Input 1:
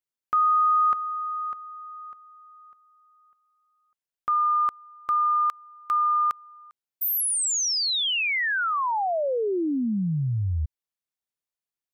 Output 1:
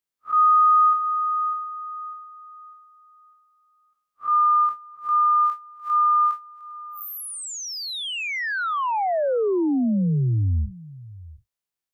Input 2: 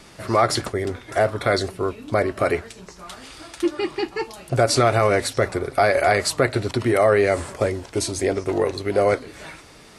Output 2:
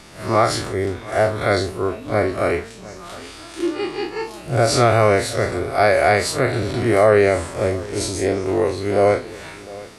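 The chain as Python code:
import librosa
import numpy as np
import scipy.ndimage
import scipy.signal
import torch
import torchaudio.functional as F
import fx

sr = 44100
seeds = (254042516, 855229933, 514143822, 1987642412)

y = fx.spec_blur(x, sr, span_ms=85.0)
y = y + 10.0 ** (-19.5 / 20.0) * np.pad(y, (int(708 * sr / 1000.0), 0))[:len(y)]
y = F.gain(torch.from_numpy(y), 4.5).numpy()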